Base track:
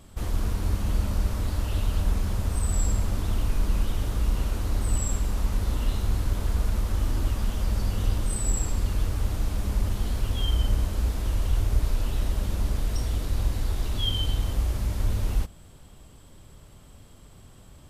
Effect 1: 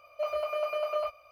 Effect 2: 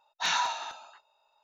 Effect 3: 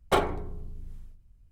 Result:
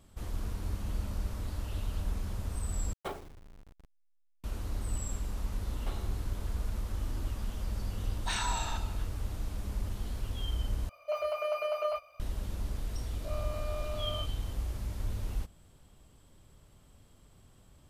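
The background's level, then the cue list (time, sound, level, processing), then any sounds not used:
base track -9.5 dB
2.93 replace with 3 -15.5 dB + level-crossing sampler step -32.5 dBFS
5.75 add 3 -7.5 dB + compressor, threshold -36 dBFS
8.06 add 2 -0.5 dB + compressor, threshold -30 dBFS
10.89 replace with 1 -1.5 dB + bell 8400 Hz +4.5 dB 1 oct
13.11 add 1 -13.5 dB + spectral dilation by 0.12 s

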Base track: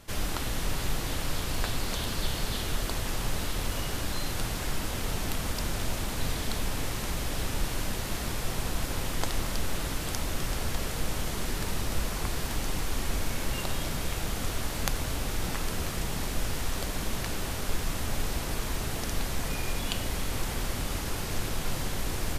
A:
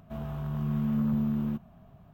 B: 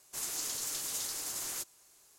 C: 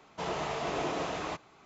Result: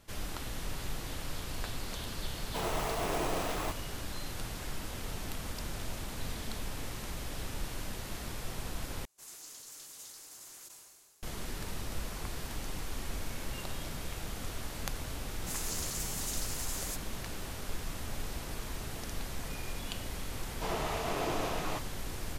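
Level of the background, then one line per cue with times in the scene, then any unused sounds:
base track -8 dB
2.36 add C -1 dB + sample-and-hold 5×
5.4 add A -17 dB + compressor, threshold -39 dBFS
9.05 replace with B -12.5 dB + sustainer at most 31 dB/s
15.33 add B -2 dB + stuck buffer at 0.7
20.43 add C -1.5 dB

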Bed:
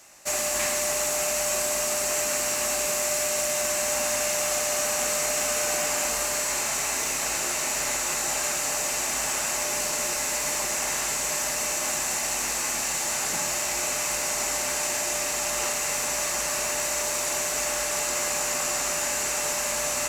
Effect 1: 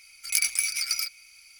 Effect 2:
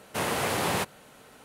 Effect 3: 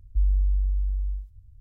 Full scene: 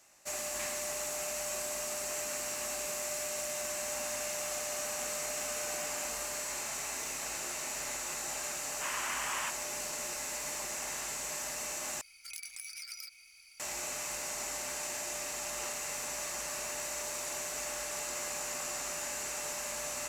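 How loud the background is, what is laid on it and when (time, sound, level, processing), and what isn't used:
bed -11 dB
8.66 add 2 -5 dB + Chebyshev band-pass 1000–3000 Hz, order 3
12.01 replace with 1 -5.5 dB + compressor 4:1, threshold -37 dBFS
not used: 3

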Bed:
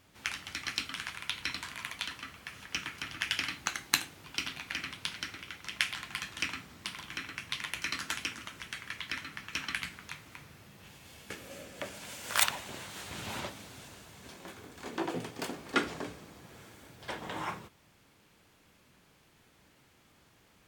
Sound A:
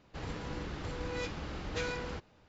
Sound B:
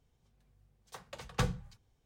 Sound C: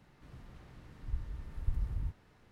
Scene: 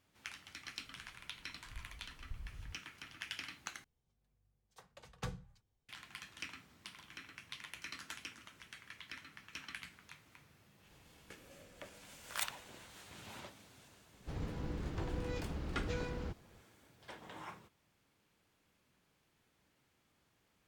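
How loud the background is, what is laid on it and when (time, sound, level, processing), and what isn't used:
bed -12 dB
0.63 add C -13.5 dB
3.84 replace with B -11 dB
10.77 add A -15.5 dB + compressor, threshold -48 dBFS
14.13 add A -9.5 dB + low shelf 480 Hz +10.5 dB

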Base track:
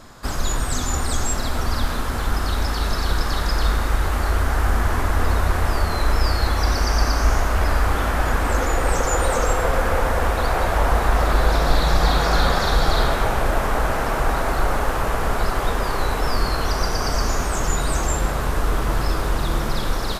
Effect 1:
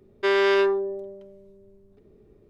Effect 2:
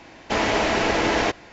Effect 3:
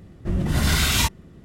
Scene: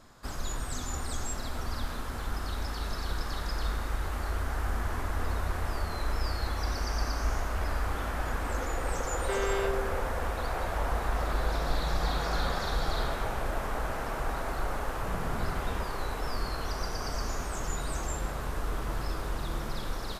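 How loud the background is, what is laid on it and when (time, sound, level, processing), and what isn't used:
base track -12 dB
9.05 add 1 -12 dB
14.76 add 3 -15.5 dB + LPF 1400 Hz
not used: 2

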